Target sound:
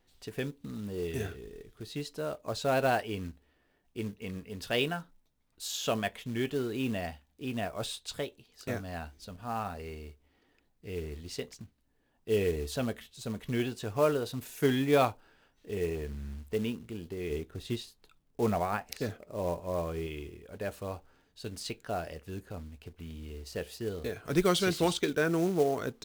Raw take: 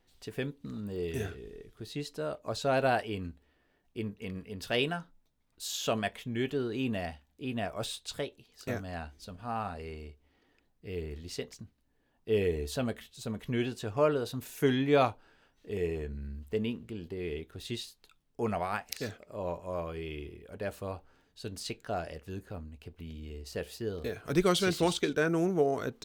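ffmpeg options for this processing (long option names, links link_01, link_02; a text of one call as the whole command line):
ffmpeg -i in.wav -filter_complex "[0:a]asettb=1/sr,asplit=3[link_01][link_02][link_03];[link_01]atrim=end=17.304[link_04];[link_02]atrim=start=17.3:end=20.07,asetpts=PTS-STARTPTS,afade=type=in:duration=0.004:curve=qsin,afade=type=out:start_time=2.766:duration=0.004:curve=qsin,tiltshelf=frequency=1400:gain=4[link_05];[link_03]atrim=start=20.066[link_06];[link_04][link_05]acrossfade=duration=0.004:curve1=hsin:curve2=qsin[link_07];[link_07][link_06]acrossfade=duration=0.004:curve1=qsin:curve2=hsin,acrusher=bits=5:mode=log:mix=0:aa=0.000001" out.wav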